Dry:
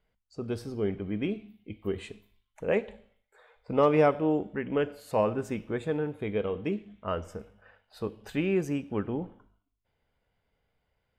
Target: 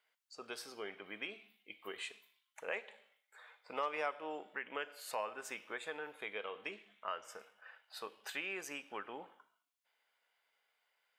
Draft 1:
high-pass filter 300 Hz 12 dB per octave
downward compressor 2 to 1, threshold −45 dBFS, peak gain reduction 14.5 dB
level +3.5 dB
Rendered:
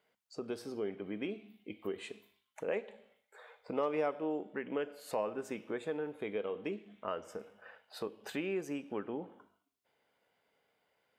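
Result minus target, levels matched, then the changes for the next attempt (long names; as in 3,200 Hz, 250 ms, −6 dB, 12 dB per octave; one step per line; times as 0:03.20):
250 Hz band +10.0 dB
change: high-pass filter 1,100 Hz 12 dB per octave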